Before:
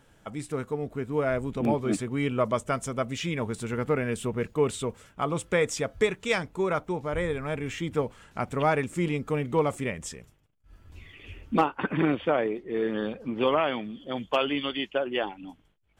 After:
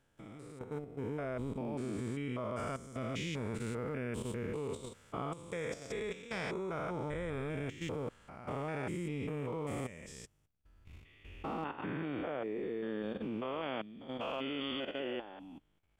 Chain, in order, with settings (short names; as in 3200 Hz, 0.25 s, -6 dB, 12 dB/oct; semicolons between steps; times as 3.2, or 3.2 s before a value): stepped spectrum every 0.2 s; level quantiser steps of 12 dB; gain -2 dB